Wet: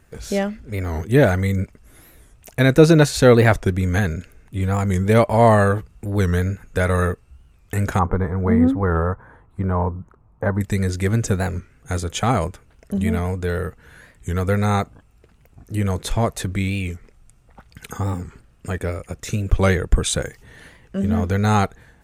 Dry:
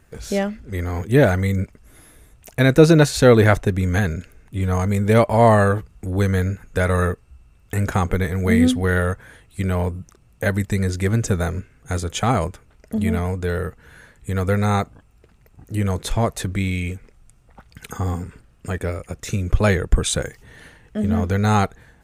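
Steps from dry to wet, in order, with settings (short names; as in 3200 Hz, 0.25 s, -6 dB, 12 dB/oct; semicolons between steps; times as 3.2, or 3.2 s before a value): 7.99–10.61 EQ curve 650 Hz 0 dB, 980 Hz +9 dB, 2600 Hz -18 dB, 4600 Hz -23 dB; record warp 45 rpm, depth 160 cents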